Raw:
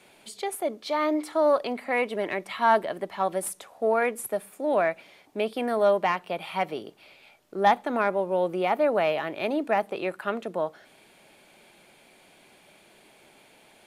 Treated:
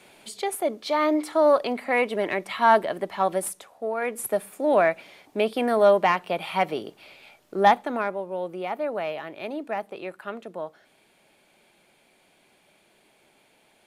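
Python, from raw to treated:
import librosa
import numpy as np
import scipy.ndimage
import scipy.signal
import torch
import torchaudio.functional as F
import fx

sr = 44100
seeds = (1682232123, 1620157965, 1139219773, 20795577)

y = fx.gain(x, sr, db=fx.line((3.36, 3.0), (3.94, -6.0), (4.25, 4.0), (7.61, 4.0), (8.23, -5.5)))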